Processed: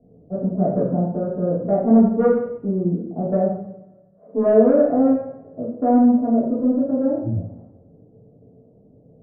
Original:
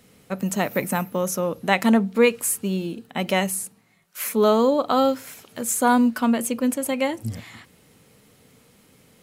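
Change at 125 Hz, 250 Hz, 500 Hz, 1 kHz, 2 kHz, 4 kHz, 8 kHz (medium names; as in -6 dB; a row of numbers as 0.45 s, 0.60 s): +6.0 dB, +5.0 dB, +3.5 dB, -3.0 dB, under -15 dB, under -40 dB, under -40 dB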